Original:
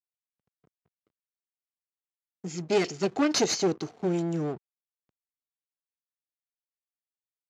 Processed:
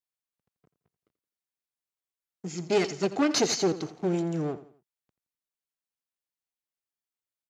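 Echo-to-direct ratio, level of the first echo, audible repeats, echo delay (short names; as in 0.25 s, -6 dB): -14.5 dB, -15.0 dB, 3, 85 ms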